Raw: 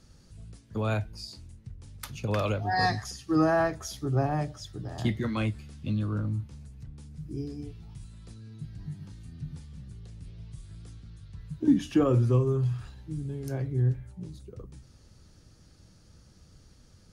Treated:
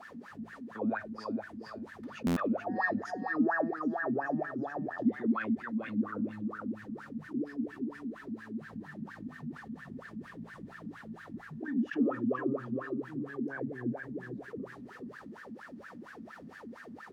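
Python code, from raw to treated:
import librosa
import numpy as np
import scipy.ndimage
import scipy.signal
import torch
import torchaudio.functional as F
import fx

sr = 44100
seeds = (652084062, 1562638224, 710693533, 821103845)

p1 = fx.quant_dither(x, sr, seeds[0], bits=8, dither='triangular')
p2 = x + F.gain(torch.from_numpy(p1), -7.0).numpy()
p3 = fx.low_shelf(p2, sr, hz=94.0, db=-7.0)
p4 = p3 + fx.echo_feedback(p3, sr, ms=425, feedback_pct=23, wet_db=-8, dry=0)
p5 = fx.wah_lfo(p4, sr, hz=4.3, low_hz=220.0, high_hz=1700.0, q=12.0)
p6 = fx.small_body(p5, sr, hz=(230.0, 1800.0), ring_ms=35, db=11)
p7 = fx.buffer_glitch(p6, sr, at_s=(2.26,), block=512, repeats=8)
p8 = fx.env_flatten(p7, sr, amount_pct=50)
y = F.gain(torch.from_numpy(p8), -4.5).numpy()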